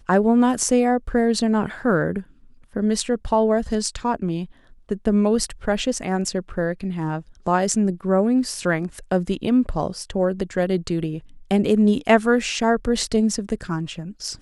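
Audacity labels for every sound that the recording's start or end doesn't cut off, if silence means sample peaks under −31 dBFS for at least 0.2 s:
2.760000	4.450000	sound
4.910000	7.200000	sound
7.470000	11.190000	sound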